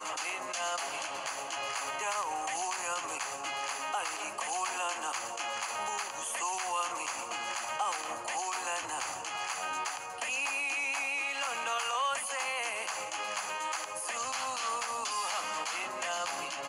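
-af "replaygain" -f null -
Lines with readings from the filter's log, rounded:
track_gain = +15.4 dB
track_peak = 0.061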